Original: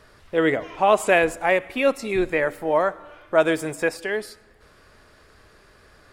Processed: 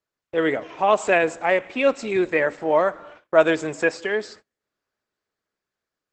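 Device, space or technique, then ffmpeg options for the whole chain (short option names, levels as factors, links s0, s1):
video call: -af "highpass=150,dynaudnorm=f=570:g=5:m=2.24,agate=range=0.0224:threshold=0.00794:ratio=16:detection=peak,volume=0.891" -ar 48000 -c:a libopus -b:a 12k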